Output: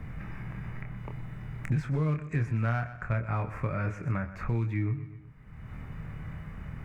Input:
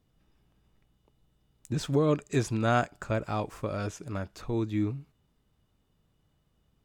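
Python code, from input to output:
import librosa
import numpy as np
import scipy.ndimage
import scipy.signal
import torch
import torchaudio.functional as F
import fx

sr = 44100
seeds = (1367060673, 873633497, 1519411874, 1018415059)

p1 = fx.curve_eq(x, sr, hz=(140.0, 330.0, 710.0, 2200.0, 3200.0), db=(0, -13, -10, 1, -24))
p2 = np.clip(p1, -10.0 ** (-27.5 / 20.0), 10.0 ** (-27.5 / 20.0))
p3 = p1 + (p2 * librosa.db_to_amplitude(-3.0))
p4 = fx.doubler(p3, sr, ms=26.0, db=-6.0)
p5 = fx.echo_feedback(p4, sr, ms=124, feedback_pct=34, wet_db=-16)
p6 = fx.band_squash(p5, sr, depth_pct=100)
y = p6 * librosa.db_to_amplitude(-1.0)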